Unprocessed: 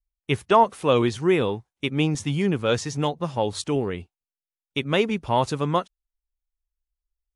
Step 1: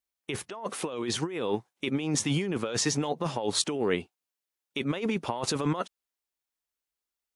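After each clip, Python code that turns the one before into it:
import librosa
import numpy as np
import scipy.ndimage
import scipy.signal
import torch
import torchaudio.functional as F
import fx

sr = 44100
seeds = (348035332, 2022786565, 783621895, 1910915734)

y = scipy.signal.sosfilt(scipy.signal.butter(2, 220.0, 'highpass', fs=sr, output='sos'), x)
y = fx.over_compress(y, sr, threshold_db=-30.0, ratio=-1.0)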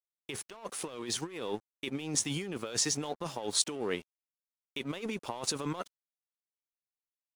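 y = fx.bass_treble(x, sr, bass_db=-3, treble_db=7)
y = np.sign(y) * np.maximum(np.abs(y) - 10.0 ** (-45.0 / 20.0), 0.0)
y = y * 10.0 ** (-5.5 / 20.0)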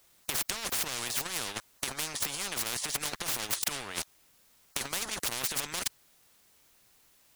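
y = fx.low_shelf(x, sr, hz=270.0, db=4.5)
y = fx.over_compress(y, sr, threshold_db=-38.0, ratio=-0.5)
y = fx.spectral_comp(y, sr, ratio=10.0)
y = y * 10.0 ** (8.0 / 20.0)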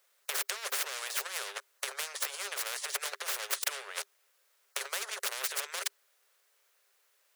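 y = scipy.signal.sosfilt(scipy.signal.cheby1(6, 6, 390.0, 'highpass', fs=sr, output='sos'), x)
y = fx.upward_expand(y, sr, threshold_db=-46.0, expansion=1.5)
y = y * 10.0 ** (4.5 / 20.0)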